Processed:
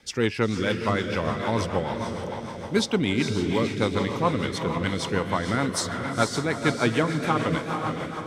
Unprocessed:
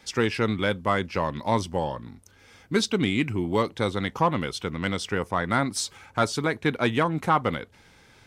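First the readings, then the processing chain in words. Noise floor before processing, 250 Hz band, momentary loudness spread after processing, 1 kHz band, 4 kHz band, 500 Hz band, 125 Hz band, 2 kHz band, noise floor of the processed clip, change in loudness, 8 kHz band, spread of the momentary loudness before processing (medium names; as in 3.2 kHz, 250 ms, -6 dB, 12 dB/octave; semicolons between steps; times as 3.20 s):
-56 dBFS, +2.0 dB, 5 LU, -1.5 dB, +1.0 dB, +1.0 dB, +2.0 dB, +0.5 dB, -35 dBFS, +0.5 dB, +1.0 dB, 6 LU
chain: echo that smears into a reverb 472 ms, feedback 55%, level -5 dB; rotary cabinet horn 6.7 Hz; trim +1.5 dB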